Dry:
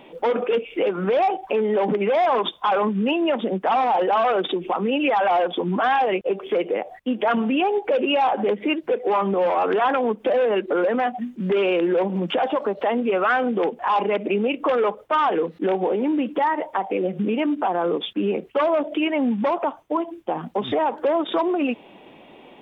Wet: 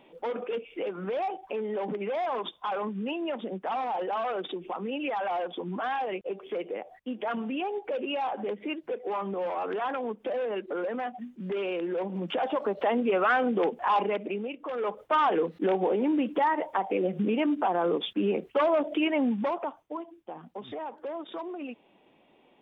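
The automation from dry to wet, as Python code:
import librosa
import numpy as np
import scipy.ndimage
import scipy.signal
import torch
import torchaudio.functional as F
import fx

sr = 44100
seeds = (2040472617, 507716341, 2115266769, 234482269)

y = fx.gain(x, sr, db=fx.line((11.9, -11.0), (12.81, -4.0), (13.95, -4.0), (14.65, -16.0), (15.01, -4.0), (19.19, -4.0), (20.16, -15.5)))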